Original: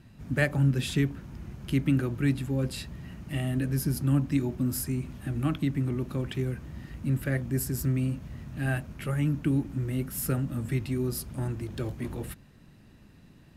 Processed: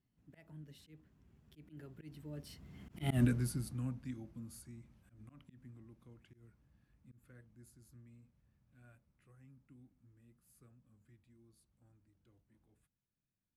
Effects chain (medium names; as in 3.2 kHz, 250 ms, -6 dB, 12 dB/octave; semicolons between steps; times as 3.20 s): Doppler pass-by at 3.16 s, 34 m/s, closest 2.6 m; slow attack 116 ms; trim +3 dB